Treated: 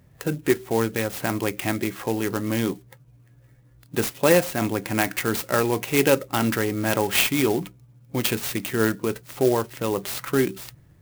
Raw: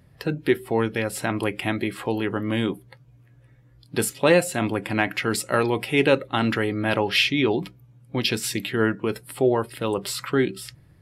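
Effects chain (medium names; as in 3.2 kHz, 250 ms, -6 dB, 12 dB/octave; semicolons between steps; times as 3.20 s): sampling jitter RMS 0.051 ms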